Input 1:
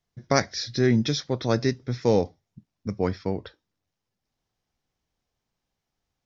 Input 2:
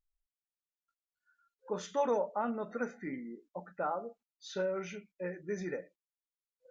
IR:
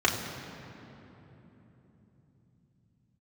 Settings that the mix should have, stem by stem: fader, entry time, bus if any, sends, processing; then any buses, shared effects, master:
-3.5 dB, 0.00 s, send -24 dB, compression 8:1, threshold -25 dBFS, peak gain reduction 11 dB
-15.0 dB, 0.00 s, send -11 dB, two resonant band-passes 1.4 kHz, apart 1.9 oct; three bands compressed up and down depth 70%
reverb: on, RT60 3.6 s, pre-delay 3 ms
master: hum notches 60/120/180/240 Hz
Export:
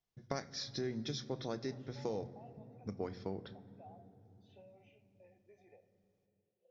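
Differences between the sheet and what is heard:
stem 1 -3.5 dB -> -10.5 dB; stem 2: send -11 dB -> -21 dB

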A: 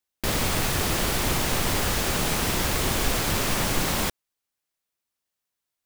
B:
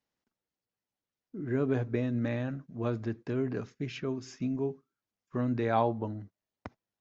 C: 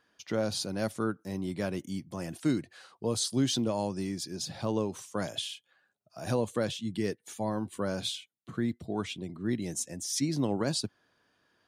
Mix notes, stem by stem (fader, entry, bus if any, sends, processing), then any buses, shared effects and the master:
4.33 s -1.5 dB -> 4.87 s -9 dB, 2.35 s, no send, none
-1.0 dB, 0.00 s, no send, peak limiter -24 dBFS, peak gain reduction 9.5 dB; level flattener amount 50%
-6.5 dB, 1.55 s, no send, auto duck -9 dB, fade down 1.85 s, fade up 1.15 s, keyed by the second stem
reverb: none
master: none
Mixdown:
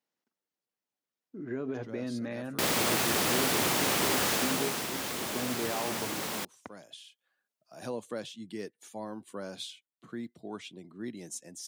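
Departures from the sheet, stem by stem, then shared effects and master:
stem B: missing level flattener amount 50%; master: extra high-pass 200 Hz 12 dB/octave

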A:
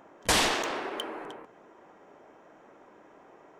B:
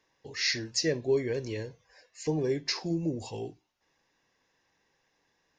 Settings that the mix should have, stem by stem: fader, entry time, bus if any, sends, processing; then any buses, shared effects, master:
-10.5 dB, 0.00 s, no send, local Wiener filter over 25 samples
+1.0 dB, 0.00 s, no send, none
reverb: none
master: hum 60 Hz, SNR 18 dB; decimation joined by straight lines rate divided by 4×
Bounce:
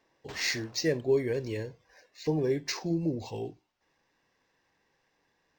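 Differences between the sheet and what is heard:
stem A -10.5 dB -> -21.5 dB; master: missing hum 60 Hz, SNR 18 dB

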